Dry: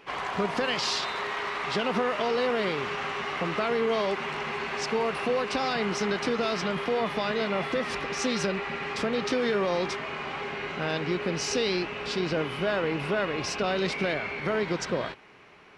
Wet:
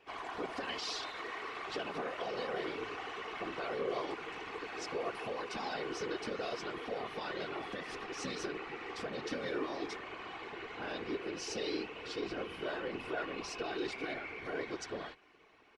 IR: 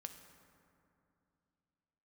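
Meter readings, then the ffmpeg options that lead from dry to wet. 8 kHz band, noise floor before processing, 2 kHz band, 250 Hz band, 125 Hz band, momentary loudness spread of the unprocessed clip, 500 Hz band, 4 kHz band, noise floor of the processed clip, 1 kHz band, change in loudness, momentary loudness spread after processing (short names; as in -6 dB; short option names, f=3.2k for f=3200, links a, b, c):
-11.5 dB, -37 dBFS, -11.0 dB, -11.5 dB, -16.5 dB, 5 LU, -11.5 dB, -11.0 dB, -49 dBFS, -10.5 dB, -11.5 dB, 5 LU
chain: -af "aecho=1:1:2.7:0.73,afftfilt=real='hypot(re,im)*cos(2*PI*random(0))':imag='hypot(re,im)*sin(2*PI*random(1))':win_size=512:overlap=0.75,volume=-7dB"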